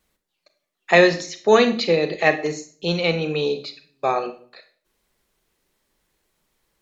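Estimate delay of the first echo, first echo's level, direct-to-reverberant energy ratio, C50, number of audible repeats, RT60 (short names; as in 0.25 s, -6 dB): none, none, 9.0 dB, 12.5 dB, none, 0.45 s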